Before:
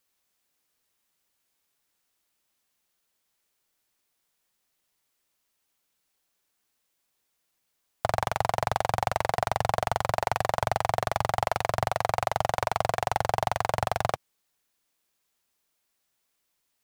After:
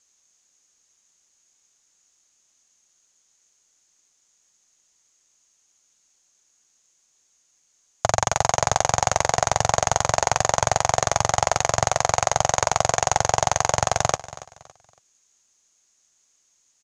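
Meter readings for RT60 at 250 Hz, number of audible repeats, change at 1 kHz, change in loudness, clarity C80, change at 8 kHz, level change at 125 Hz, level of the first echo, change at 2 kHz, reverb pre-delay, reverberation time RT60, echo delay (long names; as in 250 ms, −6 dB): no reverb audible, 2, +5.0 dB, +6.5 dB, no reverb audible, +19.5 dB, +5.0 dB, −17.0 dB, +5.5 dB, no reverb audible, no reverb audible, 280 ms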